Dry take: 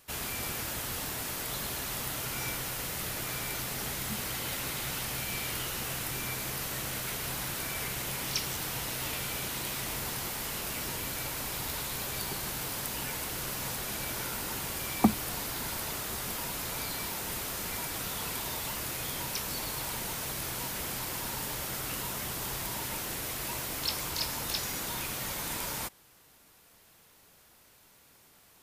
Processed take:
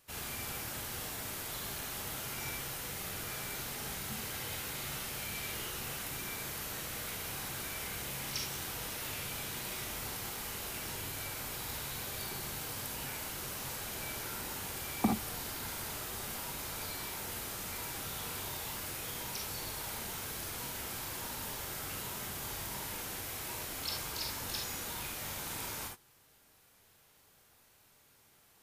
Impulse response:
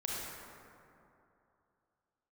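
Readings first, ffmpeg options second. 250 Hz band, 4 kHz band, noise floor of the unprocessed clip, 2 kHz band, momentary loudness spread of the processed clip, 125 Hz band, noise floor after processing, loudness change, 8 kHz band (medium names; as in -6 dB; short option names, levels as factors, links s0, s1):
-5.5 dB, -5.0 dB, -60 dBFS, -4.5 dB, 2 LU, -5.0 dB, -65 dBFS, -5.0 dB, -5.0 dB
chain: -filter_complex "[1:a]atrim=start_sample=2205,atrim=end_sample=3528[s0];[0:a][s0]afir=irnorm=-1:irlink=0,volume=0.596"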